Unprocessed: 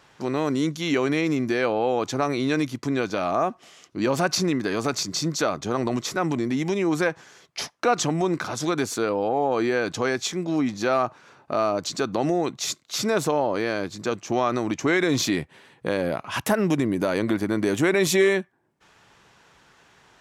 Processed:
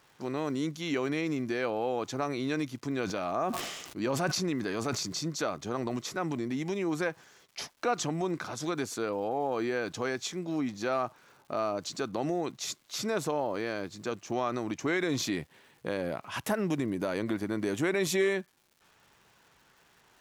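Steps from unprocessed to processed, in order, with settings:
surface crackle 420 per second −45 dBFS
0:02.90–0:05.19: level that may fall only so fast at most 41 dB per second
level −8 dB

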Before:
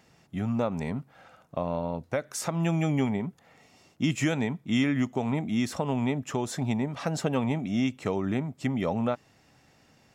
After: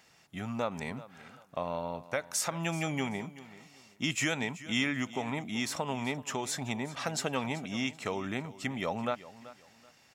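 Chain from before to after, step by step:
tilt shelving filter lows −6.5 dB, about 680 Hz
repeating echo 382 ms, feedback 26%, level −17 dB
level −3.5 dB

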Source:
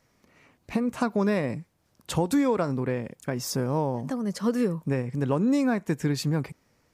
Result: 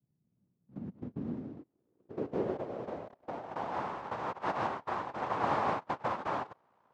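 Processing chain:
mains hum 60 Hz, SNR 30 dB
cochlear-implant simulation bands 1
low-pass filter sweep 160 Hz → 960 Hz, 0:00.34–0:03.89
level −5 dB

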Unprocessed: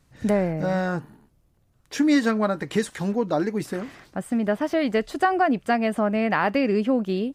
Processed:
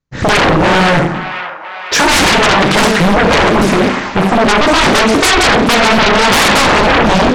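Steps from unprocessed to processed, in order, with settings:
noise gate −52 dBFS, range −46 dB
Chebyshev low-pass filter 7,300 Hz, order 8
notch filter 720 Hz, Q 18
on a send at −3.5 dB: convolution reverb RT60 0.55 s, pre-delay 28 ms
on the sum: sine wavefolder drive 19 dB, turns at −7 dBFS
in parallel at +2 dB: downward compressor, threshold −33 dBFS, peak gain reduction 21.5 dB
on the sum: delay with a band-pass on its return 503 ms, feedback 63%, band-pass 1,500 Hz, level −9.5 dB
highs frequency-modulated by the lows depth 0.85 ms

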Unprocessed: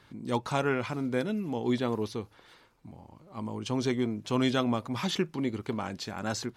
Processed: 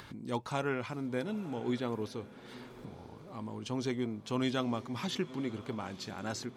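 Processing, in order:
upward compression, threshold −34 dBFS
feedback delay with all-pass diffusion 958 ms, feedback 41%, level −16 dB
level −5.5 dB

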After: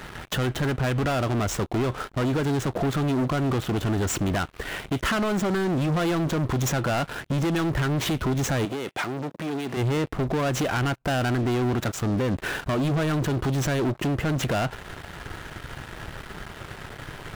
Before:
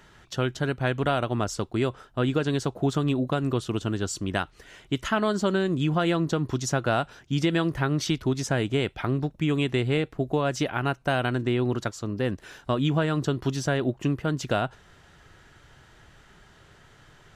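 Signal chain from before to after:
running median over 9 samples
downward compressor 5 to 1, threshold −29 dBFS, peak gain reduction 9.5 dB
leveller curve on the samples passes 5
0:08.65–0:09.77: high-pass filter 220 Hz 12 dB per octave
brickwall limiter −21 dBFS, peak gain reduction 8.5 dB

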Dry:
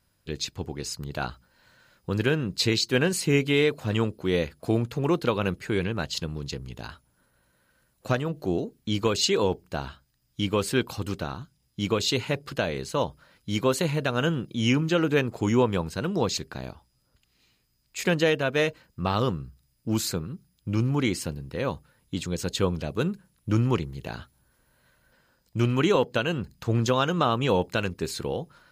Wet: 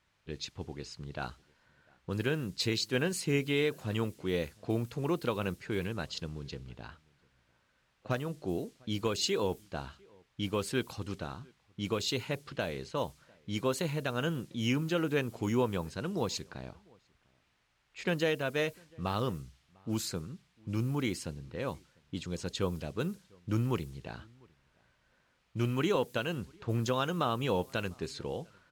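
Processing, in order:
background noise blue −50 dBFS
low-pass that shuts in the quiet parts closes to 1,900 Hz, open at −22 dBFS
slap from a distant wall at 120 metres, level −28 dB
level −7.5 dB

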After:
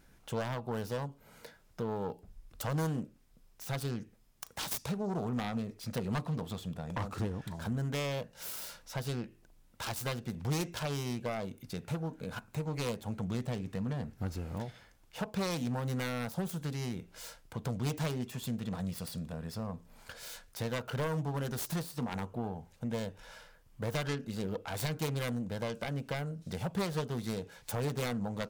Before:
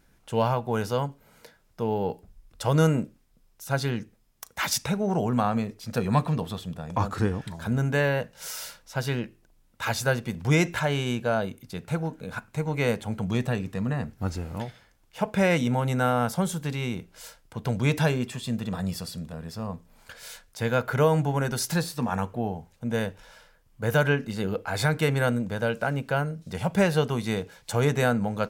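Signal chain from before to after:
phase distortion by the signal itself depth 0.45 ms
downward compressor 2 to 1, threshold −38 dBFS, peak gain reduction 11.5 dB
dynamic equaliser 2,000 Hz, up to −6 dB, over −51 dBFS, Q 1.1

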